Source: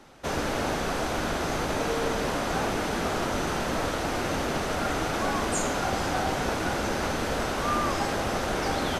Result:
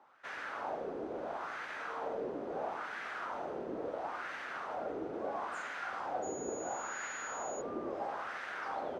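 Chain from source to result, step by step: LFO band-pass sine 0.74 Hz 380–1800 Hz; 6.22–7.6 whine 6800 Hz -42 dBFS; gain -4.5 dB

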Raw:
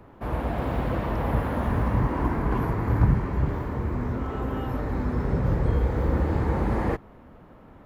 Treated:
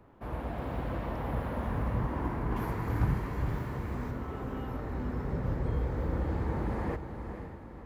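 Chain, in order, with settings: 2.56–4.11 high shelf 2400 Hz +10 dB; diffused feedback echo 0.497 s, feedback 47%, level -8 dB; gain -8.5 dB

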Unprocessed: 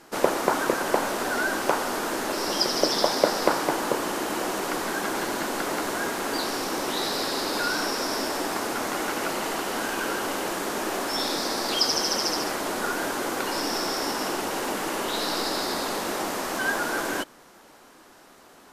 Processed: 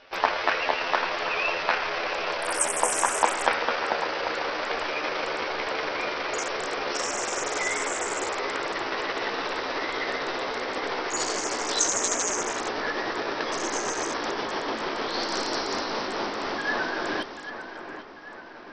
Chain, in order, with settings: gliding pitch shift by +10 st ending unshifted; split-band echo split 2800 Hz, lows 0.791 s, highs 0.268 s, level -10.5 dB; SBC 64 kbps 44100 Hz

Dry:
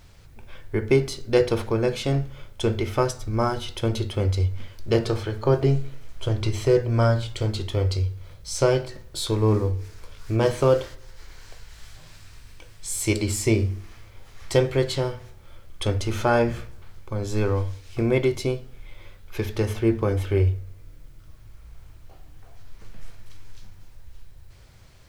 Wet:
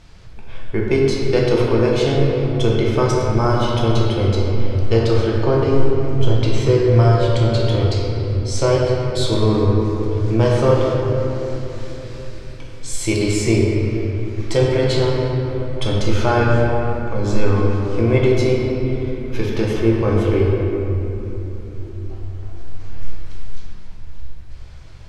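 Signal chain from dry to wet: LPF 7100 Hz 12 dB/oct; in parallel at 0 dB: limiter -16 dBFS, peak gain reduction 10.5 dB; on the sum: shoebox room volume 220 m³, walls hard, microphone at 0.67 m; gain -2.5 dB

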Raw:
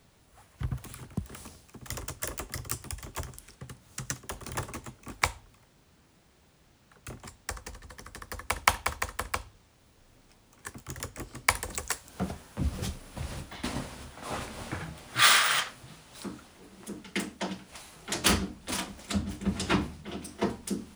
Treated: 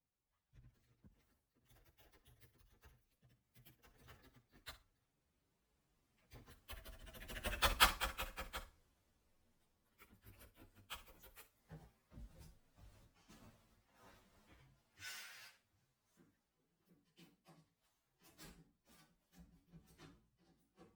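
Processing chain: inharmonic rescaling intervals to 121%; Doppler pass-by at 7.56, 36 m/s, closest 7.4 m; flutter echo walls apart 10.3 m, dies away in 0.22 s; gain +3.5 dB

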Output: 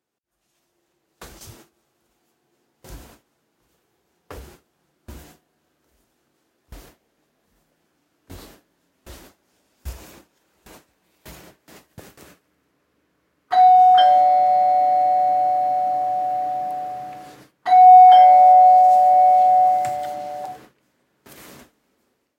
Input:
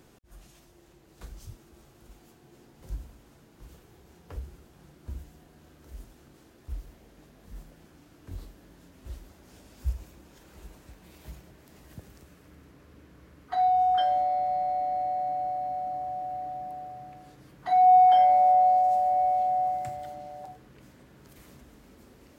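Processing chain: HPF 430 Hz 6 dB/oct; gate with hold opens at -44 dBFS; AGC gain up to 13 dB

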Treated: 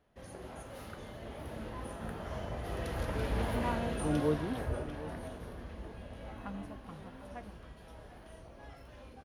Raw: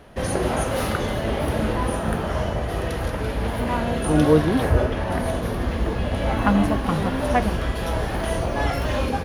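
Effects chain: Doppler pass-by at 3.39, 6 m/s, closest 2.9 m; echo 0.747 s -15 dB; gain -8 dB

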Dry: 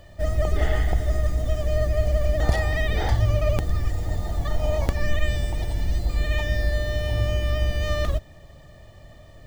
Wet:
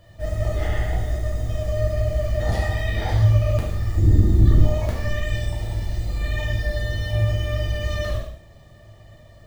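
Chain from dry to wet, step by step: 3.97–4.64 resonant low shelf 460 Hz +12 dB, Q 3; non-linear reverb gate 0.25 s falling, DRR -4.5 dB; gain -6.5 dB

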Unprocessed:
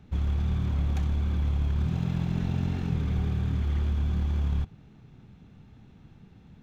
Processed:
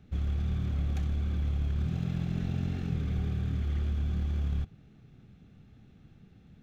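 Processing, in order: bell 950 Hz -12 dB 0.26 oct; gain -3.5 dB

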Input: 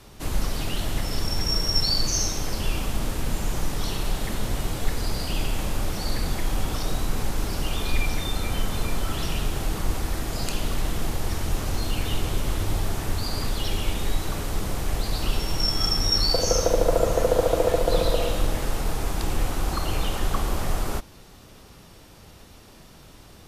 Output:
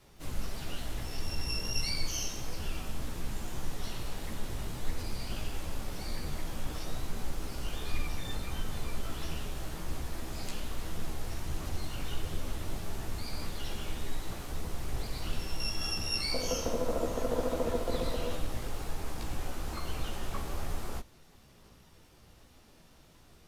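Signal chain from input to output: chorus voices 2, 1.5 Hz, delay 15 ms, depth 3 ms; harmoniser -12 st -7 dB, +12 st -14 dB; gain -8.5 dB

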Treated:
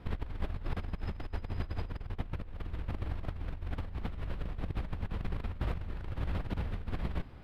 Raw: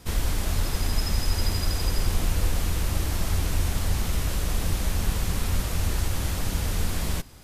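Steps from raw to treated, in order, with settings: negative-ratio compressor -28 dBFS, ratio -0.5; air absorption 450 m; gain -6 dB

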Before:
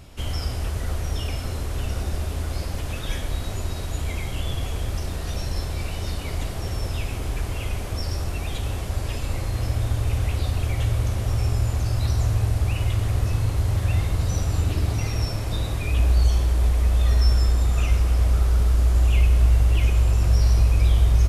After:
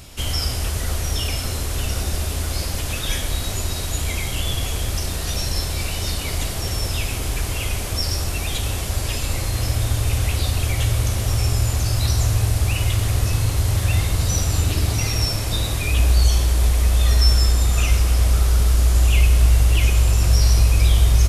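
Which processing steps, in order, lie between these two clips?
high shelf 2700 Hz +11 dB; gain +2.5 dB

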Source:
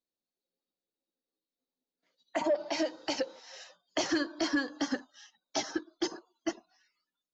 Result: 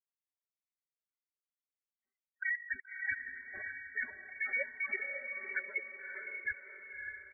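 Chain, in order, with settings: gliding pitch shift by +6 st starting unshifted; HPF 780 Hz 12 dB/oct; tilt -4 dB/oct; comb 5.5 ms, depth 80%; vocal rider within 4 dB 0.5 s; sample leveller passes 2; level quantiser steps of 16 dB; step gate ".xxx..xxxx" 161 bpm -60 dB; spectral gate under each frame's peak -10 dB strong; on a send: diffused feedback echo 0.576 s, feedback 45%, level -4 dB; on the sum: inverted band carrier 2600 Hz

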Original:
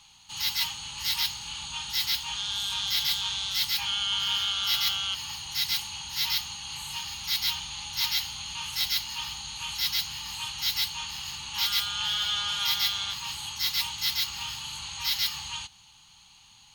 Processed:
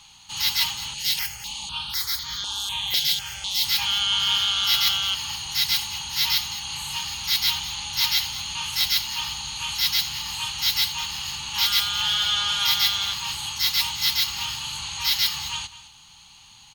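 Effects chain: echo 0.212 s -15.5 dB; 0.94–3.65 step phaser 4 Hz 290–2700 Hz; gain +5.5 dB

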